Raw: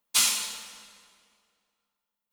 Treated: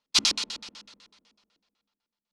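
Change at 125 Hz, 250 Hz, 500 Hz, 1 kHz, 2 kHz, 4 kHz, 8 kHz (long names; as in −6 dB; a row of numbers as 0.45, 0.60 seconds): can't be measured, +8.0 dB, +3.0 dB, −1.5 dB, −1.0 dB, +3.0 dB, −6.0 dB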